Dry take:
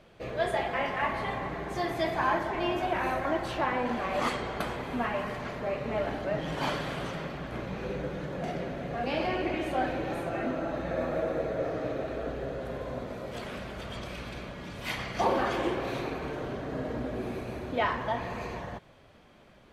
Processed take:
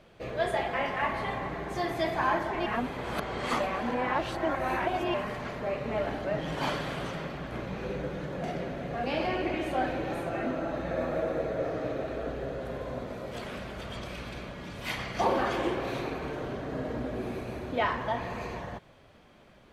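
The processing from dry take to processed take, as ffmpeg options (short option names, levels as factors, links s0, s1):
-filter_complex "[0:a]asplit=3[s0][s1][s2];[s0]atrim=end=2.662[s3];[s1]atrim=start=2.658:end=5.142,asetpts=PTS-STARTPTS,areverse[s4];[s2]atrim=start=5.138[s5];[s3][s4]acrossfade=d=0.004:c1=hsin:c2=hsin[s6];[s6][s5]acrossfade=d=0.004:c1=hsin:c2=hsin"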